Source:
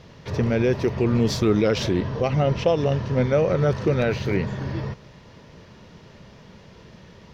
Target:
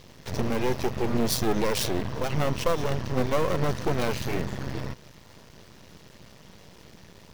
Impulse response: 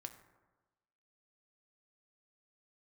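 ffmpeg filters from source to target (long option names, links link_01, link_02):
-af "aeval=exprs='max(val(0),0)':channel_layout=same,aemphasis=mode=production:type=50fm"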